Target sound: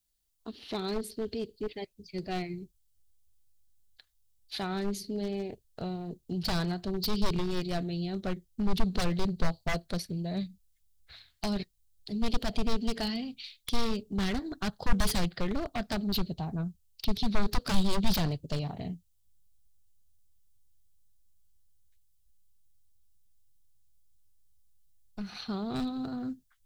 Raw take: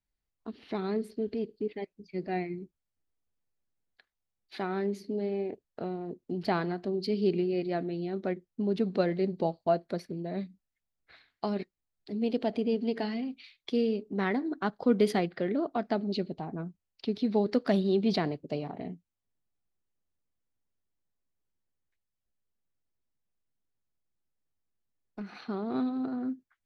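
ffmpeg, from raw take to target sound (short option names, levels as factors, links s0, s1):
-af "aexciter=amount=4.5:drive=3:freq=3000,aeval=exprs='0.0562*(abs(mod(val(0)/0.0562+3,4)-2)-1)':c=same,asubboost=boost=10.5:cutoff=93"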